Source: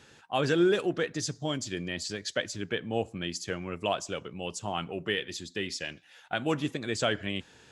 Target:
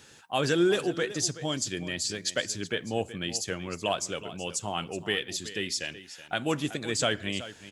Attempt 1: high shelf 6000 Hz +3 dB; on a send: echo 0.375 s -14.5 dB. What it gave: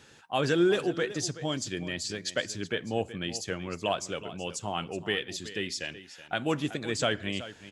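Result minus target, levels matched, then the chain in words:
8000 Hz band -4.5 dB
high shelf 6000 Hz +12.5 dB; on a send: echo 0.375 s -14.5 dB

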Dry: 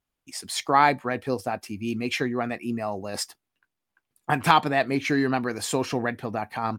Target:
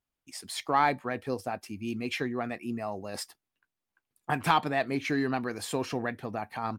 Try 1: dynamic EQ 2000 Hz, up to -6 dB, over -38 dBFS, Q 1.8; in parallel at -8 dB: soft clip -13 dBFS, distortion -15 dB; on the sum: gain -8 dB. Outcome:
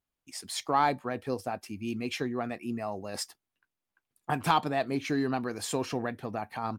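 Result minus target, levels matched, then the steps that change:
2000 Hz band -3.0 dB
change: dynamic EQ 6400 Hz, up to -6 dB, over -38 dBFS, Q 1.8

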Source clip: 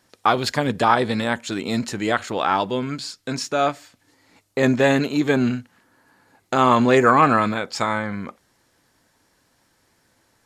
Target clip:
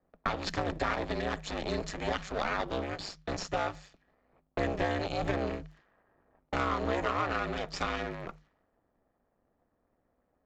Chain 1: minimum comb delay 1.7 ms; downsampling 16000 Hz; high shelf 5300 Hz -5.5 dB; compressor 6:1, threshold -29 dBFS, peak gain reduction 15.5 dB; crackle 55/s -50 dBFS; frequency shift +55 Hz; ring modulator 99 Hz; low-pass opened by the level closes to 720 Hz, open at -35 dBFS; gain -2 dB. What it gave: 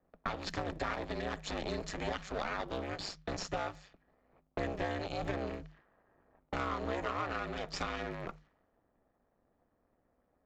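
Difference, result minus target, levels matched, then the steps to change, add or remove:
compressor: peak gain reduction +5.5 dB
change: compressor 6:1, threshold -22.5 dBFS, peak gain reduction 10 dB

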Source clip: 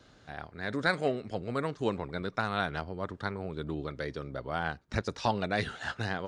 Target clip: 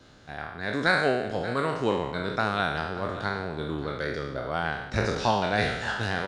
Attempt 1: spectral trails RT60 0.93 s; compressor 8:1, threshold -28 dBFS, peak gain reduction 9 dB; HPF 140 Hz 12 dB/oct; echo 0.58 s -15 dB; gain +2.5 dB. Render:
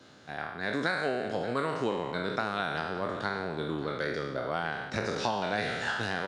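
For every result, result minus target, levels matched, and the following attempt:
compressor: peak gain reduction +9 dB; 125 Hz band -2.5 dB
spectral trails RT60 0.93 s; HPF 140 Hz 12 dB/oct; echo 0.58 s -15 dB; gain +2.5 dB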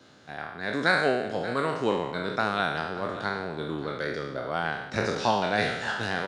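125 Hz band -4.0 dB
spectral trails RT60 0.93 s; echo 0.58 s -15 dB; gain +2.5 dB

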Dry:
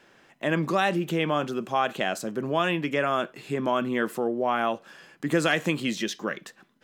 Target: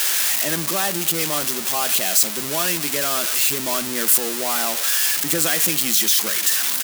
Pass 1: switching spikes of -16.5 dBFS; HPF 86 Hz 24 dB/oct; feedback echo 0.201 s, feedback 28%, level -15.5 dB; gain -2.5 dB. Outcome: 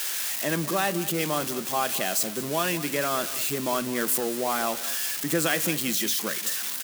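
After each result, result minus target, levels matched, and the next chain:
switching spikes: distortion -10 dB; echo-to-direct +7 dB
switching spikes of -6.5 dBFS; HPF 86 Hz 24 dB/oct; feedback echo 0.201 s, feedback 28%, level -15.5 dB; gain -2.5 dB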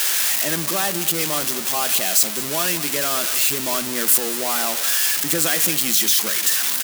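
echo-to-direct +7 dB
switching spikes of -6.5 dBFS; HPF 86 Hz 24 dB/oct; feedback echo 0.201 s, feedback 28%, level -22.5 dB; gain -2.5 dB

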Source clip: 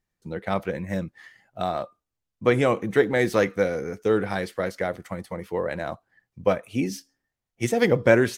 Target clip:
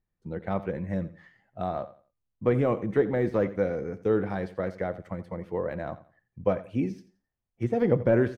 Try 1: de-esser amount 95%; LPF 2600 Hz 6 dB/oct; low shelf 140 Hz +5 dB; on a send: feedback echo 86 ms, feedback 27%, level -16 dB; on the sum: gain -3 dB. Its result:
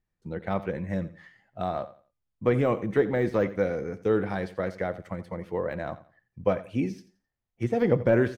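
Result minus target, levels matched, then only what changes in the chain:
2000 Hz band +2.5 dB
change: LPF 1200 Hz 6 dB/oct

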